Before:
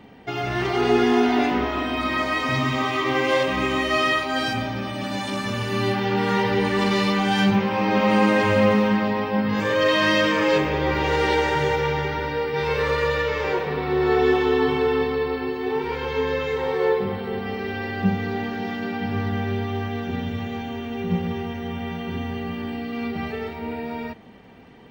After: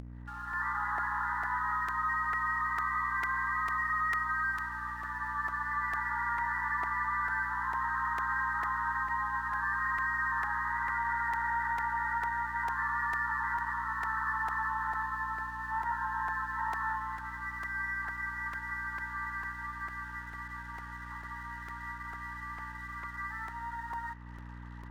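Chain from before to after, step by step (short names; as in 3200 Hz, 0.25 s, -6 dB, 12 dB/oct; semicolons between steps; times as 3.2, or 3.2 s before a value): opening faded in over 0.78 s; overloaded stage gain 16 dB; brick-wall FIR band-pass 830–2000 Hz; limiter -24 dBFS, peak gain reduction 10 dB; hum 60 Hz, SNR 14 dB; crossover distortion -59.5 dBFS; upward compressor, threshold -38 dBFS; crackling interface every 0.45 s, samples 128, repeat, from 0.53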